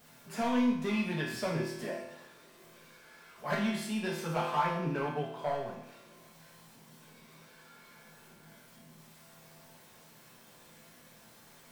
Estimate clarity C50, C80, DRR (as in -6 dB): 3.0 dB, 6.0 dB, -6.0 dB